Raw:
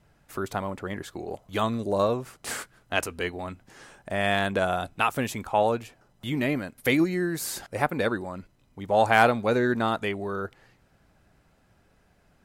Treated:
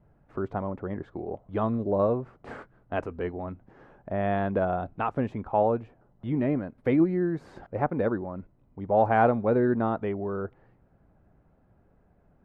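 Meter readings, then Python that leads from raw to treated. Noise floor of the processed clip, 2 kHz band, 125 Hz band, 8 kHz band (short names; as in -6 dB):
-64 dBFS, -10.0 dB, +1.5 dB, under -35 dB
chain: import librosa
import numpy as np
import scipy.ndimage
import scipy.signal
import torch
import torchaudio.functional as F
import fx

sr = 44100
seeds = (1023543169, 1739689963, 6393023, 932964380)

y = scipy.signal.sosfilt(scipy.signal.bessel(2, 770.0, 'lowpass', norm='mag', fs=sr, output='sos'), x)
y = y * librosa.db_to_amplitude(1.5)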